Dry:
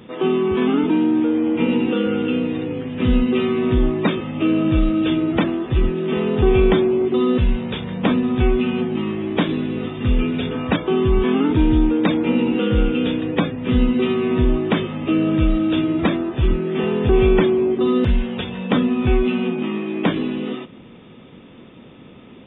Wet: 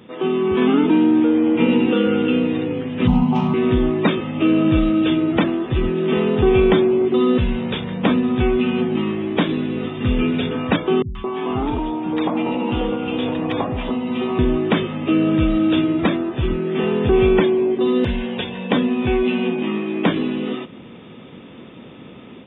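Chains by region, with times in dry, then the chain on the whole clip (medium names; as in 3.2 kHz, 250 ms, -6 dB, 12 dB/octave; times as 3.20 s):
3.07–3.54 s: self-modulated delay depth 0.17 ms + FFT filter 100 Hz 0 dB, 160 Hz +14 dB, 310 Hz -9 dB, 490 Hz -12 dB, 850 Hz +14 dB, 1.6 kHz -13 dB, 2.9 kHz -7 dB, 4.1 kHz -13 dB
11.02–14.39 s: high-order bell 870 Hz +9.5 dB 1.1 oct + compression 4:1, threshold -20 dBFS + three bands offset in time lows, highs, mids 130/220 ms, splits 210/1300 Hz
17.40–19.67 s: tone controls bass -4 dB, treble 0 dB + band-stop 1.3 kHz, Q 7.2
whole clip: high-pass 89 Hz 6 dB/octave; level rider gain up to 6 dB; trim -2 dB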